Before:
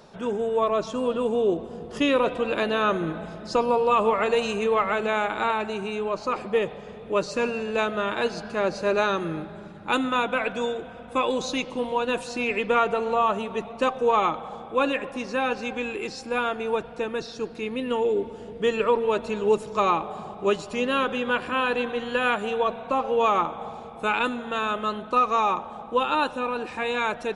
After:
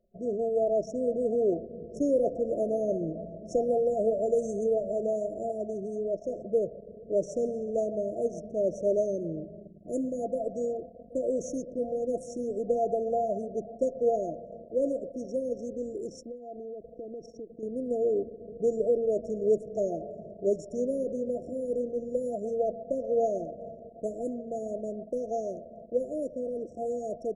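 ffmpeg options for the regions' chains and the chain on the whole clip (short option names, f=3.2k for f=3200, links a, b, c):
-filter_complex "[0:a]asettb=1/sr,asplit=3[a][b][c];[a]atrim=end=16.174[d];[b]atrim=start=16.17:end=17.63,asetpts=PTS-STARTPTS,afade=t=in:d=0.004:c=qsin,afade=t=out:st=1.456:d=0.004:c=qsin,equalizer=f=1.6k:w=1.8:g=-5,acompressor=threshold=-32dB:ratio=16:attack=3.2:release=140:knee=1:detection=peak[e];[c]atrim=start=17.626[f];[d][e]acrossfade=d=0.004:c1=hsin:c2=qsin[g];[g][f]acrossfade=d=0.004:c1=qsin:c2=hsin,anlmdn=1,afftfilt=real='re*(1-between(b*sr/4096,710,5400))':imag='im*(1-between(b*sr/4096,710,5400))':win_size=4096:overlap=0.75,equalizer=f=760:w=1.2:g=5.5,volume=-5dB"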